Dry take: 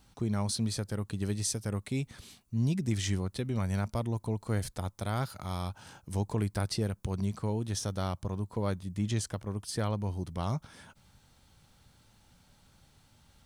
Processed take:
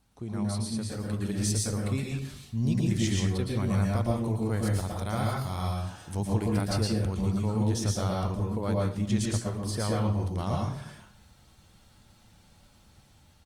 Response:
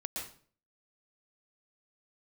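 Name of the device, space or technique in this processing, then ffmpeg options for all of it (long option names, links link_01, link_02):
speakerphone in a meeting room: -filter_complex "[1:a]atrim=start_sample=2205[link_01];[0:a][link_01]afir=irnorm=-1:irlink=0,asplit=2[link_02][link_03];[link_03]adelay=250,highpass=300,lowpass=3400,asoftclip=type=hard:threshold=-27dB,volume=-21dB[link_04];[link_02][link_04]amix=inputs=2:normalize=0,dynaudnorm=framelen=690:gausssize=3:maxgain=5.5dB,volume=-2.5dB" -ar 48000 -c:a libopus -b:a 32k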